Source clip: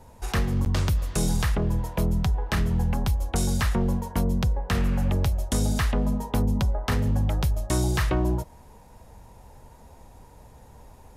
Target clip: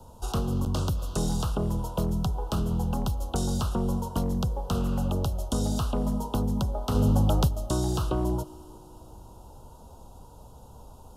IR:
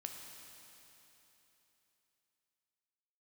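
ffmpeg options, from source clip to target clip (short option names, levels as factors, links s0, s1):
-filter_complex "[0:a]asplit=2[s0][s1];[1:a]atrim=start_sample=2205,highshelf=f=8900:g=6[s2];[s1][s2]afir=irnorm=-1:irlink=0,volume=0.168[s3];[s0][s3]amix=inputs=2:normalize=0,acrossover=split=150|720|1500|7300[s4][s5][s6][s7][s8];[s4]acompressor=threshold=0.0398:ratio=4[s9];[s5]acompressor=threshold=0.0447:ratio=4[s10];[s6]acompressor=threshold=0.0141:ratio=4[s11];[s7]acompressor=threshold=0.0126:ratio=4[s12];[s8]acompressor=threshold=0.00501:ratio=4[s13];[s9][s10][s11][s12][s13]amix=inputs=5:normalize=0,asuperstop=centerf=2000:order=8:qfactor=1.5,aeval=exprs='clip(val(0),-1,0.1)':c=same,asplit=3[s14][s15][s16];[s14]afade=t=out:st=6.94:d=0.02[s17];[s15]acontrast=39,afade=t=in:st=6.94:d=0.02,afade=t=out:st=7.47:d=0.02[s18];[s16]afade=t=in:st=7.47:d=0.02[s19];[s17][s18][s19]amix=inputs=3:normalize=0"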